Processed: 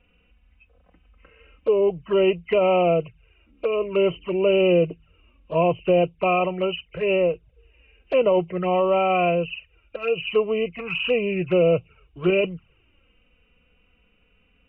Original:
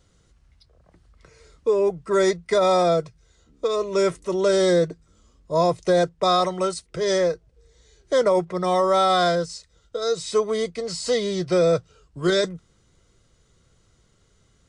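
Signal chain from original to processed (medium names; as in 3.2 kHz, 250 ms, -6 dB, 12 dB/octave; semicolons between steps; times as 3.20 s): knee-point frequency compression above 2.1 kHz 4:1; time-frequency box 10.79–11.07 s, 650–2500 Hz +9 dB; touch-sensitive flanger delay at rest 4.2 ms, full sweep at -19.5 dBFS; trim +1.5 dB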